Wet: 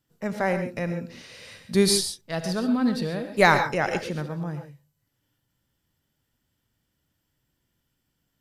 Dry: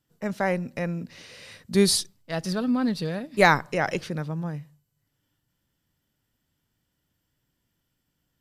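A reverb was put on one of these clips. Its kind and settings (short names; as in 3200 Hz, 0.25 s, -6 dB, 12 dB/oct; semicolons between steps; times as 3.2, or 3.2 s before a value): non-linear reverb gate 0.16 s rising, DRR 7 dB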